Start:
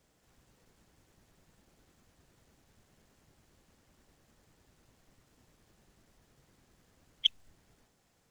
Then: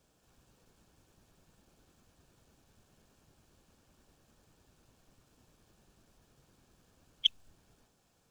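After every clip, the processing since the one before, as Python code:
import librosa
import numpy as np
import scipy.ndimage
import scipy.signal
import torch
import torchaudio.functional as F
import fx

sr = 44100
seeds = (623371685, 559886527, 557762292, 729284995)

y = fx.notch(x, sr, hz=2000.0, q=5.4)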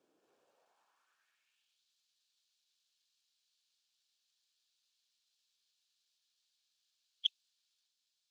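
y = fx.high_shelf(x, sr, hz=6500.0, db=-11.5)
y = fx.filter_sweep_highpass(y, sr, from_hz=330.0, to_hz=4000.0, start_s=0.16, end_s=1.84, q=2.6)
y = y * librosa.db_to_amplitude(-6.5)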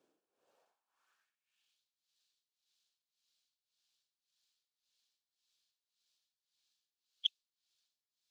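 y = x * (1.0 - 0.86 / 2.0 + 0.86 / 2.0 * np.cos(2.0 * np.pi * 1.8 * (np.arange(len(x)) / sr)))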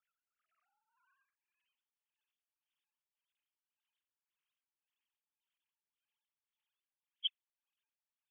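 y = fx.sine_speech(x, sr)
y = scipy.signal.sosfilt(scipy.signal.cheby1(6, 3, 830.0, 'highpass', fs=sr, output='sos'), y)
y = fx.air_absorb(y, sr, metres=500.0)
y = y * librosa.db_to_amplitude(8.0)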